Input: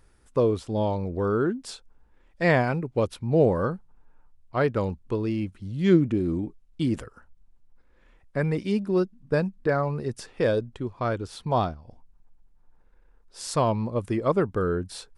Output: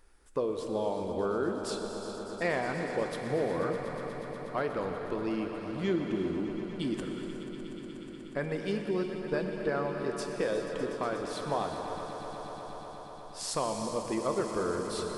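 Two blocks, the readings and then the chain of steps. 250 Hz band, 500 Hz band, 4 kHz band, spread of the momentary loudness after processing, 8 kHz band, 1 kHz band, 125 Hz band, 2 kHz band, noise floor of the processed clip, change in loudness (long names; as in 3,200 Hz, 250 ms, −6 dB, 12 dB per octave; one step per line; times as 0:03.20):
−7.0 dB, −5.5 dB, −1.0 dB, 10 LU, can't be measured, −4.5 dB, −13.0 dB, −5.0 dB, −45 dBFS, −7.5 dB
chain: parametric band 110 Hz −15 dB 1.3 octaves
downward compressor 2.5 to 1, threshold −29 dBFS, peak gain reduction 9 dB
on a send: echo that builds up and dies away 121 ms, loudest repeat 5, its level −14.5 dB
on the sum: reverb whose tail is shaped and stops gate 450 ms flat, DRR 4.5 dB
level −1.5 dB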